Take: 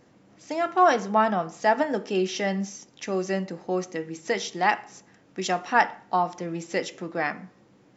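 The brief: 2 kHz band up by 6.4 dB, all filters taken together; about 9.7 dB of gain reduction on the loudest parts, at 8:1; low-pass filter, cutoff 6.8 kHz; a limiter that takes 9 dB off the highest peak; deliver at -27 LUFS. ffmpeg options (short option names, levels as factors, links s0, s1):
-af "lowpass=6800,equalizer=f=2000:t=o:g=7.5,acompressor=threshold=0.0794:ratio=8,volume=1.88,alimiter=limit=0.168:level=0:latency=1"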